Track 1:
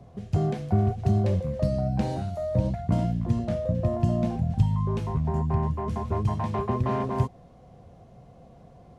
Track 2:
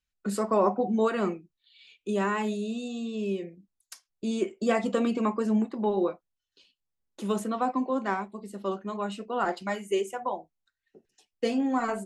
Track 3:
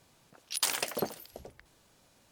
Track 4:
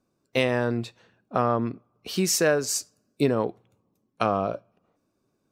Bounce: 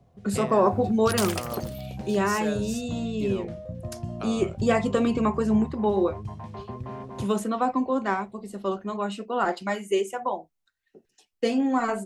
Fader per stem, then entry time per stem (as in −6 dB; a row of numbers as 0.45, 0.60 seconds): −10.5, +3.0, −0.5, −13.0 decibels; 0.00, 0.00, 0.55, 0.00 seconds